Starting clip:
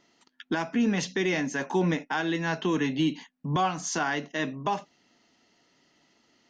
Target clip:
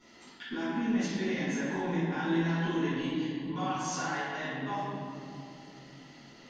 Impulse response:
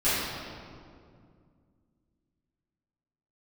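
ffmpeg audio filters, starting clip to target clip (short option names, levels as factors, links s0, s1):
-filter_complex "[0:a]asplit=3[s0][s1][s2];[s0]afade=t=out:st=3.46:d=0.02[s3];[s1]highpass=490,afade=t=in:st=3.46:d=0.02,afade=t=out:st=4.35:d=0.02[s4];[s2]afade=t=in:st=4.35:d=0.02[s5];[s3][s4][s5]amix=inputs=3:normalize=0,alimiter=level_in=1.68:limit=0.0631:level=0:latency=1:release=441,volume=0.596,acompressor=threshold=0.00178:ratio=1.5[s6];[1:a]atrim=start_sample=2205,asetrate=37485,aresample=44100[s7];[s6][s7]afir=irnorm=-1:irlink=0,volume=0.668"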